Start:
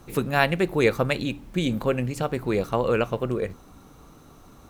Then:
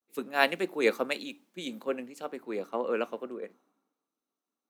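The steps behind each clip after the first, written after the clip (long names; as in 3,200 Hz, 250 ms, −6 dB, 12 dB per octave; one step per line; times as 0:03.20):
Butterworth high-pass 220 Hz 36 dB per octave
noise gate with hold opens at −45 dBFS
multiband upward and downward expander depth 100%
level −8 dB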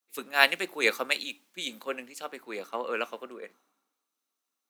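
tilt shelving filter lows −8 dB, about 800 Hz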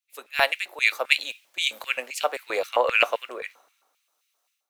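automatic gain control gain up to 13.5 dB
auto-filter high-pass square 3.8 Hz 610–2,400 Hz
level −3.5 dB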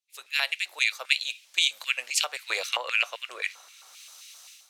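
camcorder AGC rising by 31 dB per second
resonant band-pass 5,300 Hz, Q 0.85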